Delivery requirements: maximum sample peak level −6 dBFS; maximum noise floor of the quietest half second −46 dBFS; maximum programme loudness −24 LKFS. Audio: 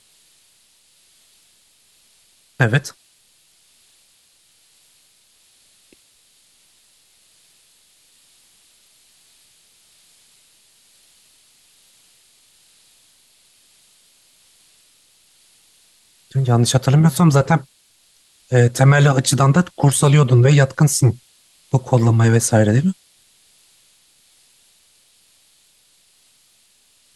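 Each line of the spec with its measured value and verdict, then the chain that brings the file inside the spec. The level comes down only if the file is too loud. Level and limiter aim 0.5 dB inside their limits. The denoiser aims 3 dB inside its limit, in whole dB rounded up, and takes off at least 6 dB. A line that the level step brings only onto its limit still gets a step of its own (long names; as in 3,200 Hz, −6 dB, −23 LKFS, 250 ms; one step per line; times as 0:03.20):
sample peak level −3.0 dBFS: out of spec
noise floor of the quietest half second −57 dBFS: in spec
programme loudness −15.5 LKFS: out of spec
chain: level −9 dB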